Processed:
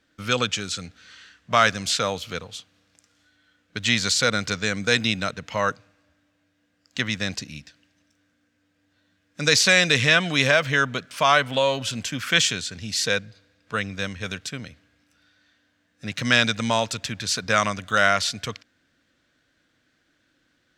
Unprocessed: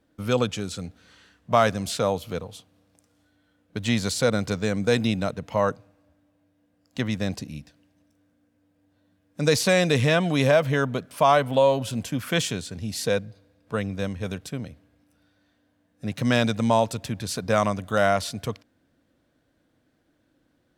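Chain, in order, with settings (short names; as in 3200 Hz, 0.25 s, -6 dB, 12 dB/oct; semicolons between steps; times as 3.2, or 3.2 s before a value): band shelf 3100 Hz +12 dB 2.9 oct; gain -3.5 dB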